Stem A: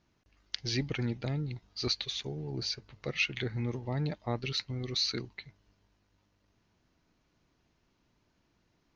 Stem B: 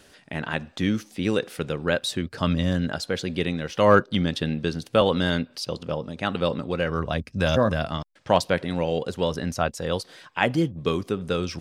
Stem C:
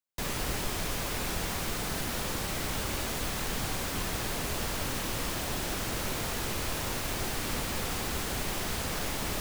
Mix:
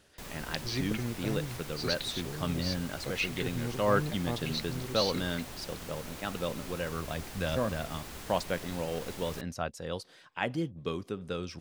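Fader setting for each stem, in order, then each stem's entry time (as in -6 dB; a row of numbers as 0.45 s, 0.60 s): -2.5 dB, -10.0 dB, -11.0 dB; 0.00 s, 0.00 s, 0.00 s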